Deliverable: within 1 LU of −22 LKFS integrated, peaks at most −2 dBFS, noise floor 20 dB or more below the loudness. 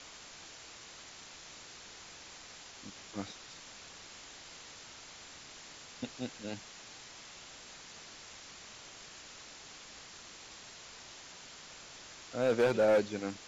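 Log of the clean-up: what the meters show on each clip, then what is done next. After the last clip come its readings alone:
share of clipped samples 0.3%; peaks flattened at −21.5 dBFS; background noise floor −52 dBFS; target noise floor −60 dBFS; integrated loudness −40.0 LKFS; sample peak −21.5 dBFS; target loudness −22.0 LKFS
→ clipped peaks rebuilt −21.5 dBFS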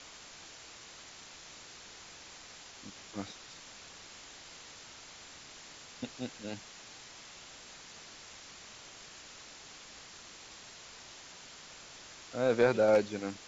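share of clipped samples 0.0%; background noise floor −52 dBFS; target noise floor −58 dBFS
→ broadband denoise 6 dB, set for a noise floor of −52 dBFS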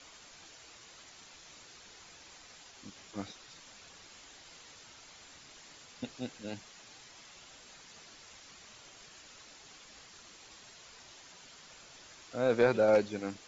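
background noise floor −55 dBFS; integrated loudness −32.0 LKFS; sample peak −14.5 dBFS; target loudness −22.0 LKFS
→ level +10 dB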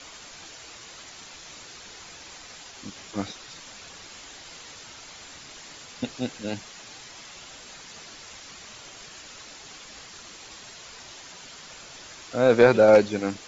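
integrated loudness −22.0 LKFS; sample peak −4.5 dBFS; background noise floor −45 dBFS

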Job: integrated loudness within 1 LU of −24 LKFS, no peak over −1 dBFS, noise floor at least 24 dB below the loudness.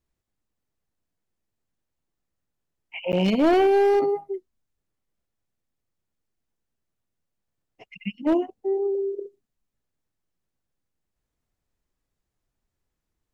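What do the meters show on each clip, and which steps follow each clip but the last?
share of clipped samples 0.6%; peaks flattened at −14.5 dBFS; number of dropouts 1; longest dropout 9.5 ms; integrated loudness −22.5 LKFS; sample peak −14.5 dBFS; target loudness −24.0 LKFS
→ clipped peaks rebuilt −14.5 dBFS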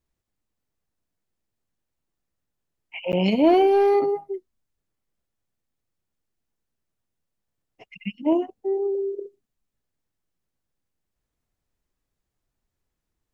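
share of clipped samples 0.0%; number of dropouts 1; longest dropout 9.5 ms
→ repair the gap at 0:03.12, 9.5 ms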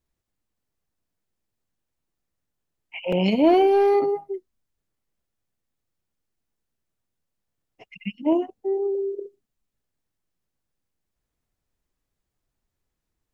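number of dropouts 0; integrated loudness −21.5 LKFS; sample peak −6.5 dBFS; target loudness −24.0 LKFS
→ level −2.5 dB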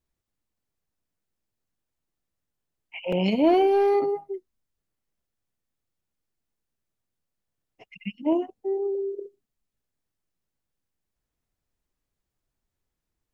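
integrated loudness −24.0 LKFS; sample peak −9.0 dBFS; background noise floor −84 dBFS

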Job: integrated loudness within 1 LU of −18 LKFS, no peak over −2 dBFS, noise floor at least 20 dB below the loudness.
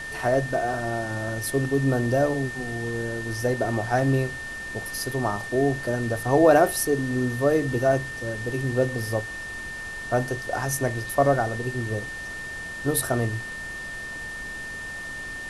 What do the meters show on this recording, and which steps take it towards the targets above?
interfering tone 1,800 Hz; level of the tone −33 dBFS; background noise floor −35 dBFS; target noise floor −46 dBFS; integrated loudness −25.5 LKFS; sample peak −5.5 dBFS; target loudness −18.0 LKFS
→ notch filter 1,800 Hz, Q 30
broadband denoise 11 dB, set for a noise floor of −35 dBFS
level +7.5 dB
brickwall limiter −2 dBFS

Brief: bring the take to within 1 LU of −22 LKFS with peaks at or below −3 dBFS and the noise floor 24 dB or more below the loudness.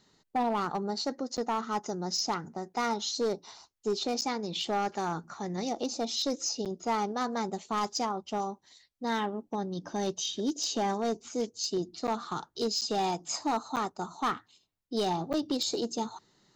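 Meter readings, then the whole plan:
share of clipped samples 1.4%; peaks flattened at −23.5 dBFS; number of dropouts 7; longest dropout 7.7 ms; integrated loudness −32.5 LKFS; sample peak −23.5 dBFS; target loudness −22.0 LKFS
→ clipped peaks rebuilt −23.5 dBFS
repair the gap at 0:01.37/0:04.21/0:06.65/0:12.07/0:12.81/0:13.76/0:15.33, 7.7 ms
level +10.5 dB

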